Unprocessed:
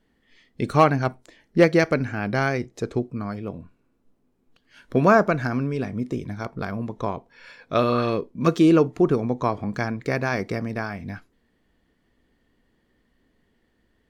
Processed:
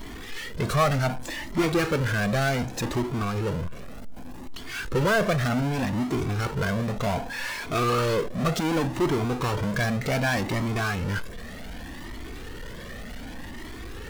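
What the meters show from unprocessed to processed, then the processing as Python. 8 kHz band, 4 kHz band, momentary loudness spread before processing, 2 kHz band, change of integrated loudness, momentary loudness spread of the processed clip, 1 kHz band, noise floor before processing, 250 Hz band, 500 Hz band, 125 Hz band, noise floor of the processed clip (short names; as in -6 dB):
n/a, +5.5 dB, 14 LU, +0.5 dB, -3.0 dB, 16 LU, -3.0 dB, -68 dBFS, -4.0 dB, -4.5 dB, +1.0 dB, -38 dBFS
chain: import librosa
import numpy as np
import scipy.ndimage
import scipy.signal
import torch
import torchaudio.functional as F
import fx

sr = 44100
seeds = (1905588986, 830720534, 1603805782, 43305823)

y = fx.power_curve(x, sr, exponent=0.35)
y = fx.comb_cascade(y, sr, direction='rising', hz=0.66)
y = y * librosa.db_to_amplitude(-6.5)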